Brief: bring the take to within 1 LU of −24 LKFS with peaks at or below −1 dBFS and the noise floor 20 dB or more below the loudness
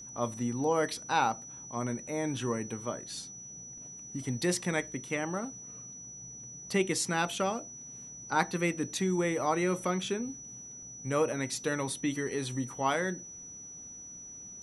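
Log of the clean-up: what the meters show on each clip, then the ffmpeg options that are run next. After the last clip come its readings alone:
interfering tone 5,900 Hz; level of the tone −44 dBFS; integrated loudness −32.5 LKFS; sample peak −12.0 dBFS; target loudness −24.0 LKFS
→ -af "bandreject=frequency=5900:width=30"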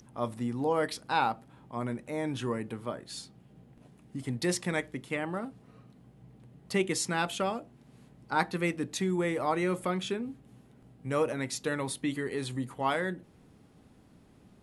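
interfering tone none found; integrated loudness −32.5 LKFS; sample peak −11.5 dBFS; target loudness −24.0 LKFS
→ -af "volume=8.5dB"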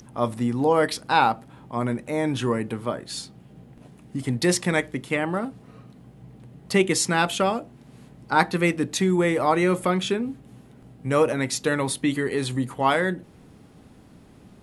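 integrated loudness −24.0 LKFS; sample peak −3.0 dBFS; background noise floor −51 dBFS

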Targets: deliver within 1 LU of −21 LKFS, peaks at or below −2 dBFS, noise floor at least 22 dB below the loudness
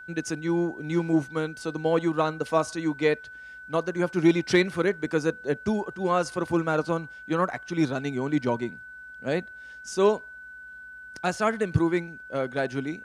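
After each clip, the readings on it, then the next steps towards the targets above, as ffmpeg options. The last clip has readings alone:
interfering tone 1,500 Hz; level of the tone −41 dBFS; integrated loudness −27.0 LKFS; sample peak −8.5 dBFS; target loudness −21.0 LKFS
→ -af "bandreject=frequency=1500:width=30"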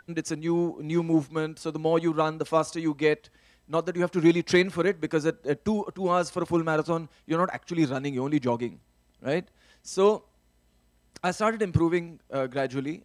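interfering tone none found; integrated loudness −27.0 LKFS; sample peak −8.5 dBFS; target loudness −21.0 LKFS
→ -af "volume=6dB"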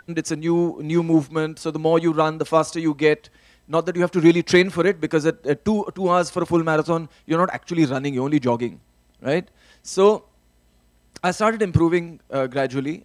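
integrated loudness −21.0 LKFS; sample peak −2.5 dBFS; background noise floor −60 dBFS

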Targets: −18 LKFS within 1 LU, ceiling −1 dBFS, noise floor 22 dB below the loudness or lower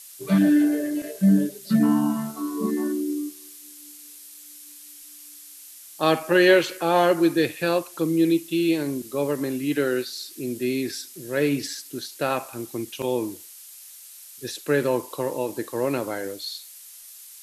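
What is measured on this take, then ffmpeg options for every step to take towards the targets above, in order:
background noise floor −45 dBFS; target noise floor −46 dBFS; integrated loudness −24.0 LKFS; sample peak −5.5 dBFS; target loudness −18.0 LKFS
→ -af "afftdn=noise_reduction=6:noise_floor=-45"
-af "volume=6dB,alimiter=limit=-1dB:level=0:latency=1"

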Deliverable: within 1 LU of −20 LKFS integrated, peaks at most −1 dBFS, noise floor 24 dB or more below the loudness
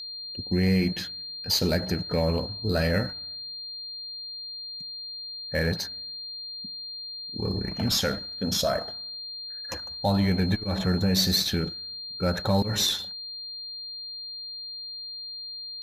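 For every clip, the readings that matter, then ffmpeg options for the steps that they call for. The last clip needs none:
interfering tone 4,200 Hz; level of the tone −35 dBFS; integrated loudness −28.0 LKFS; sample peak −12.0 dBFS; target loudness −20.0 LKFS
→ -af "bandreject=frequency=4200:width=30"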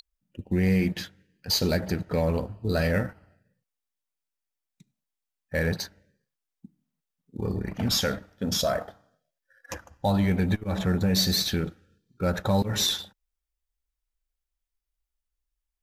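interfering tone none found; integrated loudness −26.5 LKFS; sample peak −11.5 dBFS; target loudness −20.0 LKFS
→ -af "volume=6.5dB"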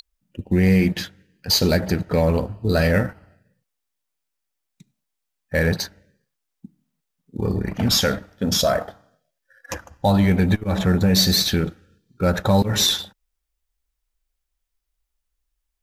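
integrated loudness −20.0 LKFS; sample peak −5.0 dBFS; background noise floor −79 dBFS

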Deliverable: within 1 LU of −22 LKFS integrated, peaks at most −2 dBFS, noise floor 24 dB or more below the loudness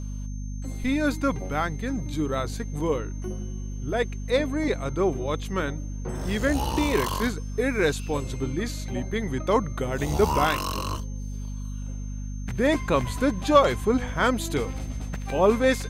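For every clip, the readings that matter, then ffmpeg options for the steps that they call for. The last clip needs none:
mains hum 50 Hz; hum harmonics up to 250 Hz; level of the hum −30 dBFS; interfering tone 6,300 Hz; level of the tone −50 dBFS; integrated loudness −26.5 LKFS; sample peak −5.0 dBFS; target loudness −22.0 LKFS
→ -af "bandreject=frequency=50:width_type=h:width=4,bandreject=frequency=100:width_type=h:width=4,bandreject=frequency=150:width_type=h:width=4,bandreject=frequency=200:width_type=h:width=4,bandreject=frequency=250:width_type=h:width=4"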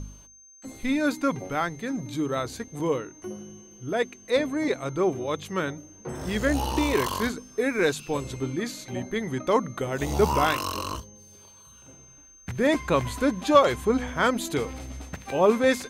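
mains hum none found; interfering tone 6,300 Hz; level of the tone −50 dBFS
→ -af "bandreject=frequency=6300:width=30"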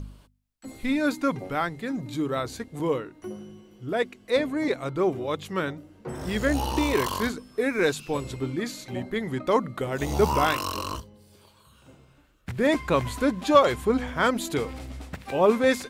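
interfering tone none found; integrated loudness −26.0 LKFS; sample peak −5.0 dBFS; target loudness −22.0 LKFS
→ -af "volume=4dB,alimiter=limit=-2dB:level=0:latency=1"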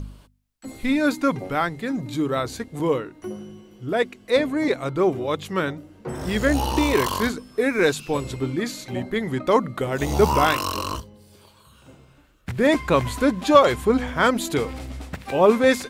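integrated loudness −22.5 LKFS; sample peak −2.0 dBFS; background noise floor −54 dBFS

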